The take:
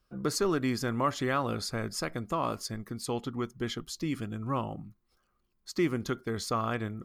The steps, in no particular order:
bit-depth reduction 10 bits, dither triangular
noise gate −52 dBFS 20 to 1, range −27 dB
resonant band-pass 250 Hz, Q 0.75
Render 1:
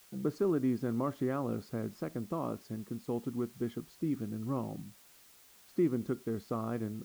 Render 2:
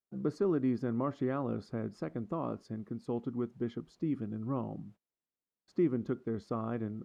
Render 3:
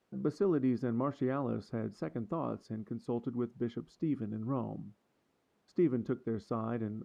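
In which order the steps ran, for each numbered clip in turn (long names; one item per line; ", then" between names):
noise gate, then resonant band-pass, then bit-depth reduction
bit-depth reduction, then noise gate, then resonant band-pass
noise gate, then bit-depth reduction, then resonant band-pass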